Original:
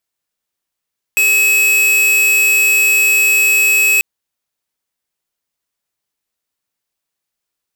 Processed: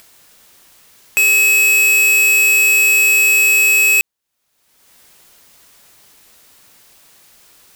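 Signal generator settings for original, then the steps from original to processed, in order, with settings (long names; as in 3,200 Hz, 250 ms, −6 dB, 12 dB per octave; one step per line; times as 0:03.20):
tone square 2,570 Hz −11.5 dBFS 2.84 s
upward compression, threshold −23 dBFS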